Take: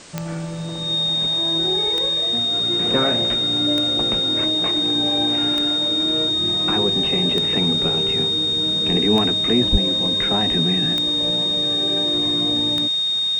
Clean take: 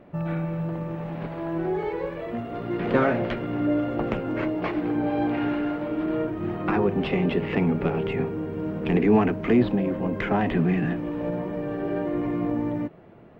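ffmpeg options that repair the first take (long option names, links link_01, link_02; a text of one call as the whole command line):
ffmpeg -i in.wav -filter_complex "[0:a]adeclick=threshold=4,bandreject=frequency=3700:width=30,asplit=3[link_01][link_02][link_03];[link_01]afade=type=out:start_time=9.71:duration=0.02[link_04];[link_02]highpass=frequency=140:width=0.5412,highpass=frequency=140:width=1.3066,afade=type=in:start_time=9.71:duration=0.02,afade=type=out:start_time=9.83:duration=0.02[link_05];[link_03]afade=type=in:start_time=9.83:duration=0.02[link_06];[link_04][link_05][link_06]amix=inputs=3:normalize=0,afwtdn=0.01" out.wav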